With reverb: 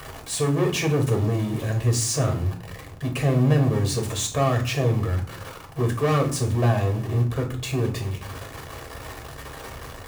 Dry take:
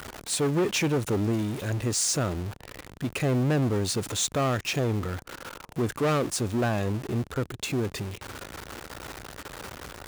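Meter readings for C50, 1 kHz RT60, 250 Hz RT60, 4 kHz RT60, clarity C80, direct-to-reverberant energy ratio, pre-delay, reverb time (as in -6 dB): 11.0 dB, 0.50 s, 0.75 s, 0.30 s, 16.0 dB, 1.5 dB, 3 ms, 0.45 s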